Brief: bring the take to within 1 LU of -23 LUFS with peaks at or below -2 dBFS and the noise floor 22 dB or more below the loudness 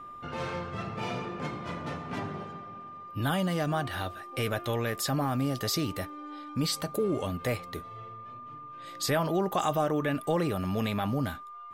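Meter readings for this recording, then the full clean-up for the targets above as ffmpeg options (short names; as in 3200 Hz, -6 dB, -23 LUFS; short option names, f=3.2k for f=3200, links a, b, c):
steady tone 1200 Hz; tone level -42 dBFS; loudness -31.5 LUFS; peak -16.5 dBFS; loudness target -23.0 LUFS
-> -af "bandreject=f=1.2k:w=30"
-af "volume=8.5dB"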